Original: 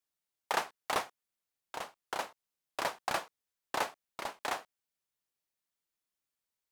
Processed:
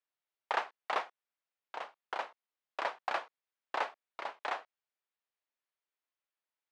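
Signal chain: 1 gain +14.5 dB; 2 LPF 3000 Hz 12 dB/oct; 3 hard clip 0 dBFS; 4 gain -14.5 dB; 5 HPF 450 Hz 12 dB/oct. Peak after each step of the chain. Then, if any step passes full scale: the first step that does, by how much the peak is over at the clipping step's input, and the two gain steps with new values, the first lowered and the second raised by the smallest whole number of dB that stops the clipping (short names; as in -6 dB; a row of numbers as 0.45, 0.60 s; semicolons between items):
-2.0, -2.5, -2.5, -17.0, -17.0 dBFS; no overload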